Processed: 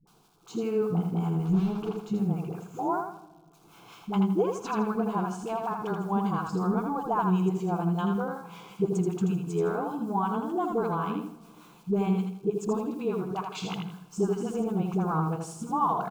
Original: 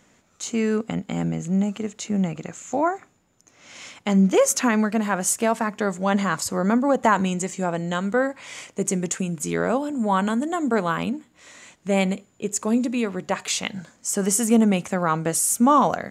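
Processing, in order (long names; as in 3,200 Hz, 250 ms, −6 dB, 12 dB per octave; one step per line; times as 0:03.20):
0:01.38–0:02.05: one scale factor per block 3 bits
low-pass filter 2,200 Hz 12 dB per octave
downward compressor 4 to 1, threshold −22 dBFS, peak gain reduction 8.5 dB
bit reduction 10 bits
phaser with its sweep stopped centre 380 Hz, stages 8
all-pass dispersion highs, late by 73 ms, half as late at 450 Hz
two-band tremolo in antiphase 5.2 Hz, depth 70%, crossover 830 Hz
repeating echo 81 ms, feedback 30%, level −5 dB
convolution reverb RT60 1.5 s, pre-delay 7 ms, DRR 15 dB
level +3.5 dB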